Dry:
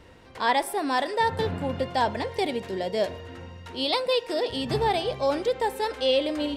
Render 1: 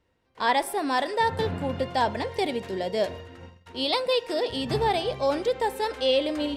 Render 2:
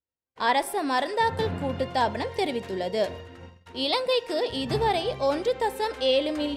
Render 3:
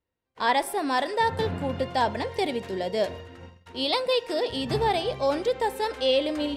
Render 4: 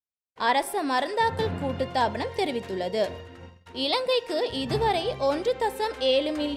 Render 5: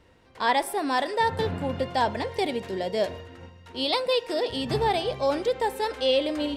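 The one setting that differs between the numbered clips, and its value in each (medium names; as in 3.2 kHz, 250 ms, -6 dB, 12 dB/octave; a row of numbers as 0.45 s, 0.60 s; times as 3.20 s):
gate, range: -20 dB, -47 dB, -34 dB, -60 dB, -7 dB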